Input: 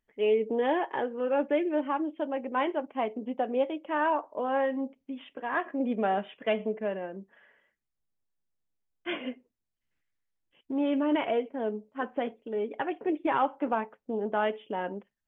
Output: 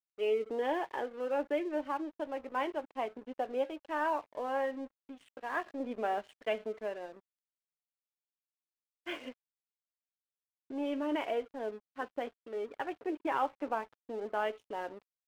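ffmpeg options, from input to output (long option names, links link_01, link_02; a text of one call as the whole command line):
ffmpeg -i in.wav -af "equalizer=frequency=180:width_type=o:width=0.59:gain=-15,aeval=exprs='sgn(val(0))*max(abs(val(0))-0.00355,0)':channel_layout=same,volume=-4.5dB" out.wav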